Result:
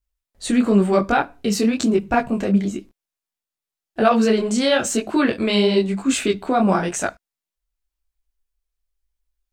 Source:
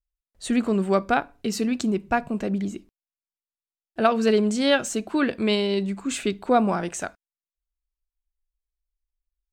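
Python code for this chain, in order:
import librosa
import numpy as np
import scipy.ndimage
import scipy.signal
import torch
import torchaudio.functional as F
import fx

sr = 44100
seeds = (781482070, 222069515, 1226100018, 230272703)

p1 = fx.over_compress(x, sr, threshold_db=-22.0, ratio=-0.5)
p2 = x + F.gain(torch.from_numpy(p1), -1.5).numpy()
p3 = fx.detune_double(p2, sr, cents=34)
y = F.gain(torch.from_numpy(p3), 4.0).numpy()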